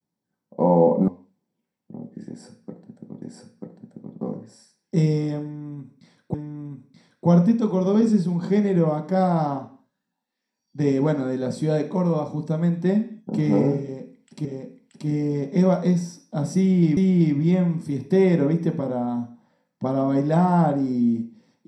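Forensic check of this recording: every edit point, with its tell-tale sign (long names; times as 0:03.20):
0:01.08: cut off before it has died away
0:03.22: the same again, the last 0.94 s
0:06.34: the same again, the last 0.93 s
0:14.45: the same again, the last 0.63 s
0:16.97: the same again, the last 0.38 s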